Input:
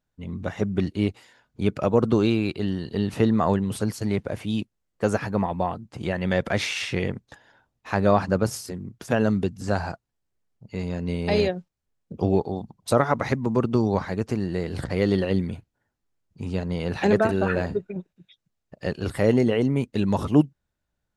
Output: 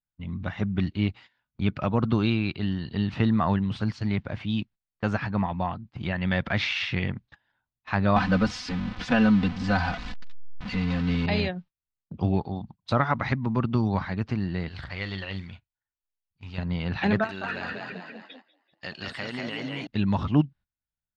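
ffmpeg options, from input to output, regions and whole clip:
-filter_complex "[0:a]asettb=1/sr,asplit=3[s0][s1][s2];[s0]atrim=end=8.164[s3];[s1]atrim=start=8.16:end=11.26,asetpts=PTS-STARTPTS,afade=t=in:d=0.004:c=qsin,afade=t=out:st=3.096:d=0.004:c=qsin,aeval=exprs='val(0)+0.5*0.0335*sgn(val(0))':c=same,aecho=1:1:4:0.9,atrim=end_sample=136710[s4];[s2]atrim=start=11.256[s5];[s3][s4]acrossfade=d=0.004:c1=hsin:c2=qsin[s6];[s6][s5]acrossfade=d=0.004:c1=qsin:c2=hsin,asettb=1/sr,asplit=3[s7][s8][s9];[s7]atrim=end=14.684[s10];[s8]atrim=start=14.68:end=16.58,asetpts=PTS-STARTPTS,afade=t=in:d=0.004:c=qsin,afade=t=out:st=1.896:d=0.004:c=qsin,acrusher=bits=8:mode=log:mix=0:aa=0.000001,equalizer=f=210:t=o:w=2.9:g=-14,asplit=2[s11][s12];[s12]adelay=41,volume=0.211[s13];[s11][s13]amix=inputs=2:normalize=0,atrim=end_sample=83790[s14];[s9]atrim=start=16.576[s15];[s10][s14]acrossfade=d=0.004:c1=hsin:c2=qsin[s16];[s16][s15]acrossfade=d=0.004:c1=qsin:c2=hsin,asettb=1/sr,asplit=3[s17][s18][s19];[s17]atrim=end=17.244[s20];[s18]atrim=start=17.24:end=19.87,asetpts=PTS-STARTPTS,afade=t=in:d=0.004:c=qsin,afade=t=out:st=2.626:d=0.004:c=qsin,aemphasis=mode=production:type=riaa,acompressor=threshold=0.0398:ratio=3:attack=3.2:release=140:knee=1:detection=peak,asplit=8[s21][s22][s23][s24][s25][s26][s27][s28];[s22]adelay=195,afreqshift=37,volume=0.708[s29];[s23]adelay=390,afreqshift=74,volume=0.38[s30];[s24]adelay=585,afreqshift=111,volume=0.207[s31];[s25]adelay=780,afreqshift=148,volume=0.111[s32];[s26]adelay=975,afreqshift=185,volume=0.0603[s33];[s27]adelay=1170,afreqshift=222,volume=0.0324[s34];[s28]adelay=1365,afreqshift=259,volume=0.0176[s35];[s21][s29][s30][s31][s32][s33][s34][s35]amix=inputs=8:normalize=0,atrim=end_sample=115983[s36];[s19]atrim=start=19.866[s37];[s20][s36]acrossfade=d=0.004:c1=hsin:c2=qsin[s38];[s38][s37]acrossfade=d=0.004:c1=qsin:c2=hsin,lowpass=f=4200:w=0.5412,lowpass=f=4200:w=1.3066,agate=range=0.158:threshold=0.00708:ratio=16:detection=peak,equalizer=f=450:w=1.2:g=-12.5,volume=1.19"

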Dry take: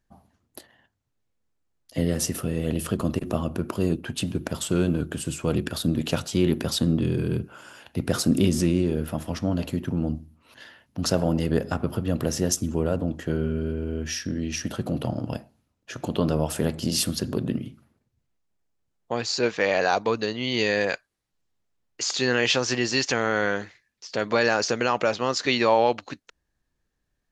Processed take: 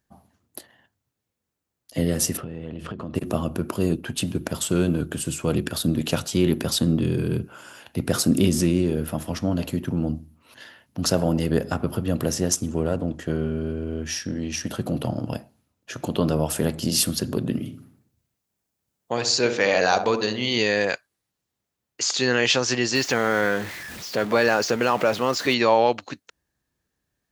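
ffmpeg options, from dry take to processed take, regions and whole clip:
-filter_complex "[0:a]asettb=1/sr,asplit=3[s0][s1][s2];[s0]atrim=end=2.374[s3];[s1]atrim=start=2.37:end=3.15,asetpts=PTS-STARTPTS,afade=t=in:d=0.004:c=qsin,afade=t=out:st=0.776:d=0.004:c=qsin,lowpass=2800,acompressor=threshold=0.0316:ratio=6:attack=3.2:release=140:knee=1:detection=peak[s4];[s2]atrim=start=3.146[s5];[s3][s4]acrossfade=d=0.004:c1=hsin:c2=qsin[s6];[s6][s5]acrossfade=d=0.004:c1=qsin:c2=hsin,asettb=1/sr,asplit=3[s7][s8][s9];[s7]atrim=end=12.344[s10];[s8]atrim=start=12.34:end=14.69,asetpts=PTS-STARTPTS,afade=t=in:d=0.004:c=qsin,afade=t=out:st=2.346:d=0.004:c=qsin,aeval=exprs='if(lt(val(0),0),0.708*val(0),val(0))':c=same,lowpass=f=11000:w=0.5412,lowpass=f=11000:w=1.3066[s11];[s9]atrim=start=14.686[s12];[s10][s11]acrossfade=d=0.004:c1=hsin:c2=qsin[s13];[s13][s12]acrossfade=d=0.004:c1=qsin:c2=hsin,asettb=1/sr,asplit=3[s14][s15][s16];[s14]atrim=end=17.524[s17];[s15]atrim=start=17.52:end=20.58,asetpts=PTS-STARTPTS,afade=t=in:d=0.004:c=qsin,afade=t=out:st=3.056:d=0.004:c=qsin,highshelf=f=4100:g=5.5,asplit=2[s18][s19];[s19]adelay=65,lowpass=f=1200:p=1,volume=0.447,asplit=2[s20][s21];[s21]adelay=65,lowpass=f=1200:p=1,volume=0.51,asplit=2[s22][s23];[s23]adelay=65,lowpass=f=1200:p=1,volume=0.51,asplit=2[s24][s25];[s25]adelay=65,lowpass=f=1200:p=1,volume=0.51,asplit=2[s26][s27];[s27]adelay=65,lowpass=f=1200:p=1,volume=0.51,asplit=2[s28][s29];[s29]adelay=65,lowpass=f=1200:p=1,volume=0.51[s30];[s18][s20][s22][s24][s26][s28][s30]amix=inputs=7:normalize=0,atrim=end_sample=134946[s31];[s16]atrim=start=20.576[s32];[s17][s31]acrossfade=d=0.004:c1=hsin:c2=qsin[s33];[s33][s32]acrossfade=d=0.004:c1=qsin:c2=hsin,asettb=1/sr,asplit=3[s34][s35][s36];[s34]atrim=end=22.954[s37];[s35]atrim=start=22.95:end=25.54,asetpts=PTS-STARTPTS,afade=t=in:d=0.004:c=qsin,afade=t=out:st=2.586:d=0.004:c=qsin,aeval=exprs='val(0)+0.5*0.0282*sgn(val(0))':c=same,highshelf=f=4500:g=-8.5[s38];[s36]atrim=start=25.536[s39];[s37][s38]acrossfade=d=0.004:c1=hsin:c2=qsin[s40];[s40][s39]acrossfade=d=0.004:c1=qsin:c2=hsin,highpass=66,highshelf=f=10000:g=8,volume=1.19"

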